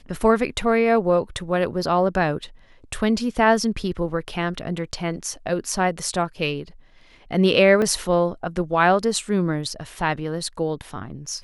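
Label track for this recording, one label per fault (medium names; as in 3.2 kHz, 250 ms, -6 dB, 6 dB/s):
7.820000	7.820000	dropout 2.1 ms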